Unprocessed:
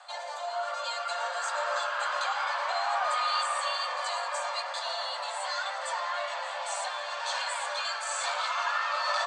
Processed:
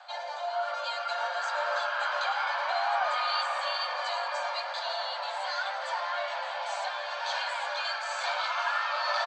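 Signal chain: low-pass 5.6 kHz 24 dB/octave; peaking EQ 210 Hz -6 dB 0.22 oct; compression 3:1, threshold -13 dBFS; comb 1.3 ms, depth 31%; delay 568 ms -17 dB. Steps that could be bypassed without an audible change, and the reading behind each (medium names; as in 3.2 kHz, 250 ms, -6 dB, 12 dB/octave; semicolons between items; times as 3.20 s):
peaking EQ 210 Hz: input has nothing below 430 Hz; compression, threshold -13 dBFS: peak at its input -17.0 dBFS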